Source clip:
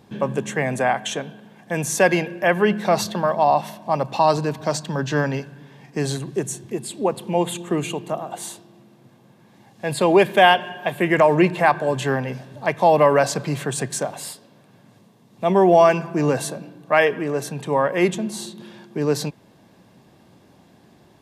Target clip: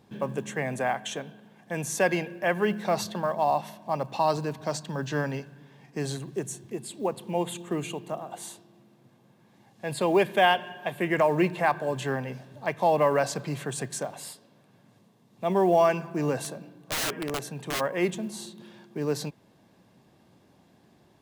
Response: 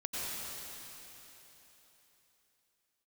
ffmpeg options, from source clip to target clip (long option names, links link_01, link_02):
-filter_complex "[0:a]asplit=3[link_01][link_02][link_03];[link_01]afade=type=out:start_time=16.36:duration=0.02[link_04];[link_02]aeval=exprs='(mod(6.68*val(0)+1,2)-1)/6.68':channel_layout=same,afade=type=in:start_time=16.36:duration=0.02,afade=type=out:start_time=17.79:duration=0.02[link_05];[link_03]afade=type=in:start_time=17.79:duration=0.02[link_06];[link_04][link_05][link_06]amix=inputs=3:normalize=0,acrusher=bits=9:mode=log:mix=0:aa=0.000001,volume=-7.5dB"